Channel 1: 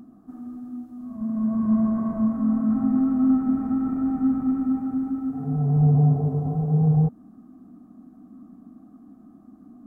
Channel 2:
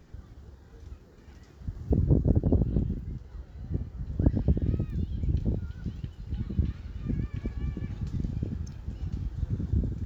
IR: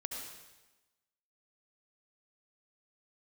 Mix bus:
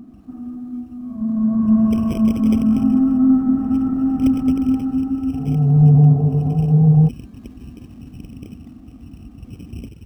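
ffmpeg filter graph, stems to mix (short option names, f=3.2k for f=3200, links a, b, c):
-filter_complex "[0:a]lowshelf=f=390:g=7.5,volume=0.5dB[a];[1:a]adynamicequalizer=threshold=0.00794:dfrequency=430:dqfactor=0.76:tfrequency=430:tqfactor=0.76:attack=5:release=100:ratio=0.375:range=3:mode=boostabove:tftype=bell,acrusher=samples=16:mix=1:aa=0.000001,volume=-7dB[b];[a][b]amix=inputs=2:normalize=0"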